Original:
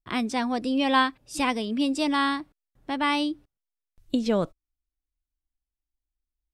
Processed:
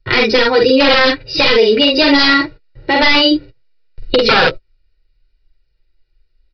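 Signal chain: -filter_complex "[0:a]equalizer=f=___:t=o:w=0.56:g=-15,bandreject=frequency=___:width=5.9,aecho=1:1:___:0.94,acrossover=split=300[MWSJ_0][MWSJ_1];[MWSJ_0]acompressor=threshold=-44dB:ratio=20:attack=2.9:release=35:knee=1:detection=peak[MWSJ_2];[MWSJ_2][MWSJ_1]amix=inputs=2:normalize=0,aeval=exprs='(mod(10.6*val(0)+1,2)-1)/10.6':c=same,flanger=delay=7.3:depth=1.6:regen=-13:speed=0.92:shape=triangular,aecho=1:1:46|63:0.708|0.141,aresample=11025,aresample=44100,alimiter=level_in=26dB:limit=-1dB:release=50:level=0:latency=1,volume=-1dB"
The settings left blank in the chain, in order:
1000, 3300, 2.1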